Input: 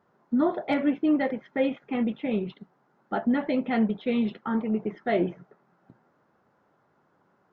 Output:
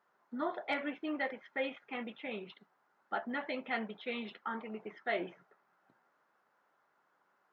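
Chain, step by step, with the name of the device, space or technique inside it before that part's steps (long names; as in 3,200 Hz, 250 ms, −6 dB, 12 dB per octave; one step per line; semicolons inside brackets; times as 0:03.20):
filter by subtraction (in parallel: low-pass filter 1,600 Hz 12 dB per octave + polarity inversion)
on the sum: level −4.5 dB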